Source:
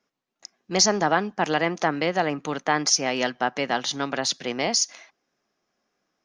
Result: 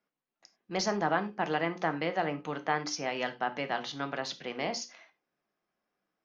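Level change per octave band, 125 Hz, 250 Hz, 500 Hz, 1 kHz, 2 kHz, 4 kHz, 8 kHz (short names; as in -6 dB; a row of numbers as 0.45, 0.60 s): -6.5, -8.0, -7.5, -7.0, -7.5, -12.5, -17.5 dB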